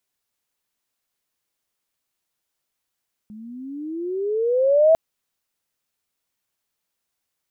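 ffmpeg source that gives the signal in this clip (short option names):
-f lavfi -i "aevalsrc='pow(10,(-10+26.5*(t/1.65-1))/20)*sin(2*PI*208*1.65/(20*log(2)/12)*(exp(20*log(2)/12*t/1.65)-1))':d=1.65:s=44100"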